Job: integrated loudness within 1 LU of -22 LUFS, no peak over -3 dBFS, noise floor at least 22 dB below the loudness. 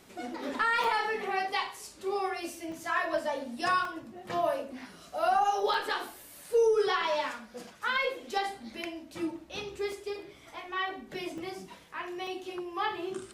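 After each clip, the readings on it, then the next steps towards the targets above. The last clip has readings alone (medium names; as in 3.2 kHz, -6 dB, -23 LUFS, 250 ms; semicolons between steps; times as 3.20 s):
dropouts 7; longest dropout 2.4 ms; loudness -32.0 LUFS; peak level -16.5 dBFS; loudness target -22.0 LUFS
-> interpolate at 0.84/2.72/3.85/5.74/9.92/11.38/12.27 s, 2.4 ms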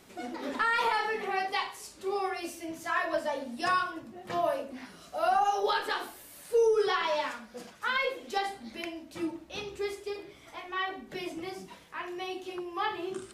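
dropouts 0; loudness -32.0 LUFS; peak level -16.5 dBFS; loudness target -22.0 LUFS
-> trim +10 dB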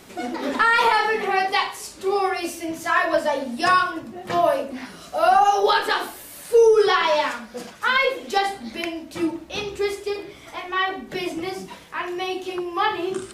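loudness -22.0 LUFS; peak level -6.5 dBFS; noise floor -44 dBFS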